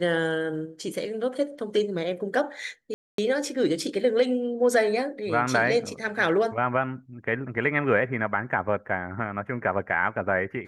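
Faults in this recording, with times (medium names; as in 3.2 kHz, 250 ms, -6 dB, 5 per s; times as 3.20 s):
2.94–3.18 s: dropout 243 ms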